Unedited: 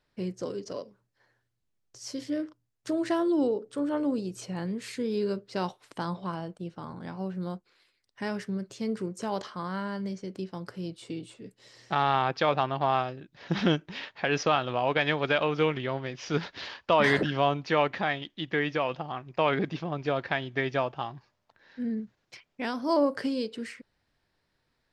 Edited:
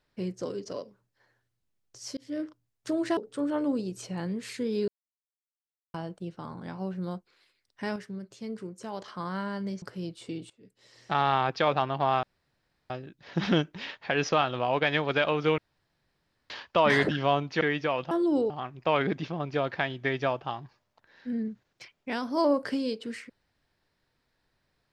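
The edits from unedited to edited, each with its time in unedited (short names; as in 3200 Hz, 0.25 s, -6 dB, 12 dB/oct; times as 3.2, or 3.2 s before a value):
2.17–2.43 fade in
3.17–3.56 move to 19.02
5.27–6.33 mute
8.35–9.47 gain -6 dB
10.21–10.63 cut
11.31–11.97 fade in, from -20 dB
13.04 insert room tone 0.67 s
15.72–16.64 room tone
17.75–18.52 cut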